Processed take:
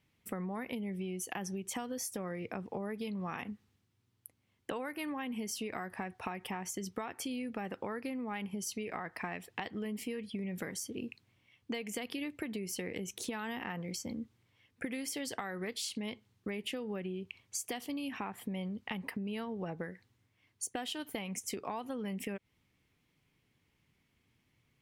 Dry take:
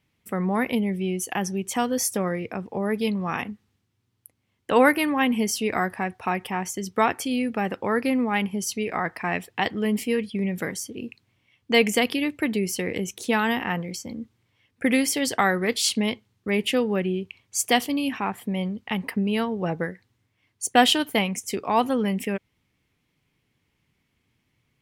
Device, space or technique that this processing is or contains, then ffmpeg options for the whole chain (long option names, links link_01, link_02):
serial compression, leveller first: -af "acompressor=threshold=-25dB:ratio=3,acompressor=threshold=-33dB:ratio=6,volume=-3dB"